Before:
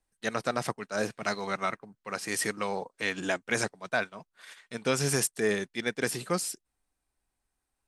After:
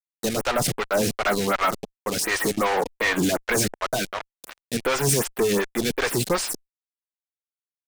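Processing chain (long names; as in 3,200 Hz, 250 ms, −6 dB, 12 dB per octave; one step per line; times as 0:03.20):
fuzz pedal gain 47 dB, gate −42 dBFS
phaser with staggered stages 2.7 Hz
level −3.5 dB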